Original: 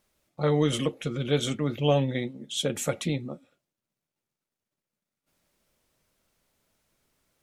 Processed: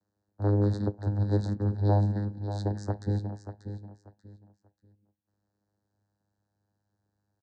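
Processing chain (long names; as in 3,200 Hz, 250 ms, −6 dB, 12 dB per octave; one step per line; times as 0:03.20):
channel vocoder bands 8, saw 102 Hz
elliptic band-stop filter 1,800–3,900 Hz, stop band 40 dB
repeating echo 587 ms, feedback 25%, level −10 dB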